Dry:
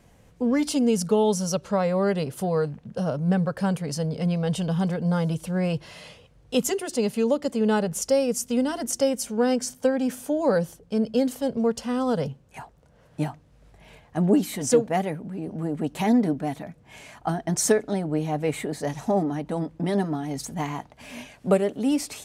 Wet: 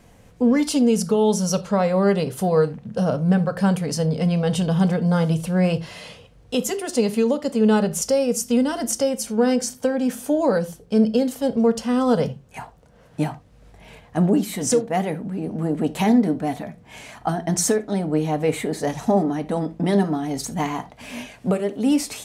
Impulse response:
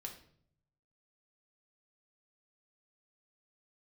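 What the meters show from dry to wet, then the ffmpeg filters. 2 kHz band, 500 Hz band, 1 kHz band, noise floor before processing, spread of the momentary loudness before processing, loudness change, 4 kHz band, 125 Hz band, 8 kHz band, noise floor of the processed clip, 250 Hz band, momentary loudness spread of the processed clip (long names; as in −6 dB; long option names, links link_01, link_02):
+3.0 dB, +3.0 dB, +3.5 dB, −56 dBFS, 10 LU, +4.0 dB, +3.5 dB, +4.0 dB, +3.5 dB, −51 dBFS, +4.5 dB, 9 LU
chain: -filter_complex "[0:a]alimiter=limit=-15.5dB:level=0:latency=1:release=459,asplit=2[link_01][link_02];[1:a]atrim=start_sample=2205,afade=type=out:start_time=0.14:duration=0.01,atrim=end_sample=6615[link_03];[link_02][link_03]afir=irnorm=-1:irlink=0,volume=0.5dB[link_04];[link_01][link_04]amix=inputs=2:normalize=0,volume=1dB"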